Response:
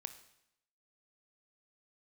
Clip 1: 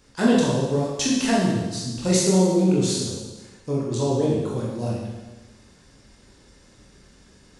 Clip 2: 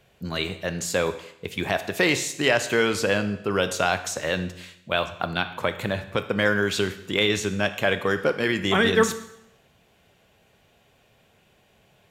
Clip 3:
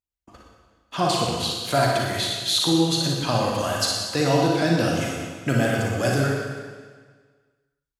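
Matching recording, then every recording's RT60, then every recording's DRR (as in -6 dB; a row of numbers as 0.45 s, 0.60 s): 2; 1.2 s, 0.80 s, 1.6 s; -5.0 dB, 9.5 dB, -2.5 dB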